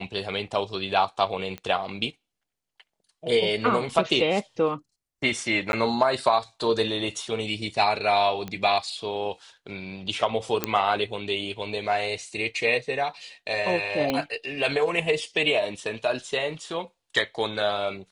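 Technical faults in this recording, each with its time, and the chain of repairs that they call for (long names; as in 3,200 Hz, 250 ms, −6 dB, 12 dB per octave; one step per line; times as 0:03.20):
0:01.58: click −21 dBFS
0:05.72–0:05.73: drop-out 11 ms
0:08.48: click −19 dBFS
0:10.64: click −6 dBFS
0:14.10: click −12 dBFS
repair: click removal
repair the gap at 0:05.72, 11 ms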